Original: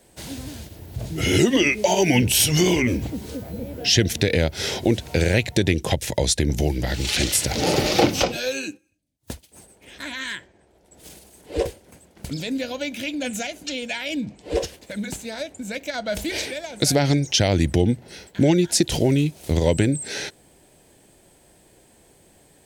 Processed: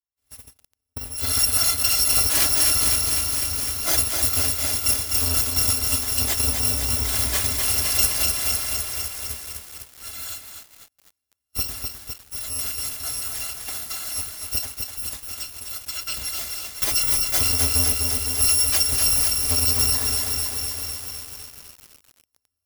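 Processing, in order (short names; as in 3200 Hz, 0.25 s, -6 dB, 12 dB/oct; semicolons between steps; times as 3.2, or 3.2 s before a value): FFT order left unsorted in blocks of 256 samples; notch comb 180 Hz; diffused feedback echo 0.467 s, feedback 79%, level -13.5 dB; 11.65–12.86 transient shaper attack -4 dB, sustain +11 dB; de-hum 349.7 Hz, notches 26; gate -32 dBFS, range -40 dB; lo-fi delay 0.253 s, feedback 80%, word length 6-bit, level -4 dB; gain -2 dB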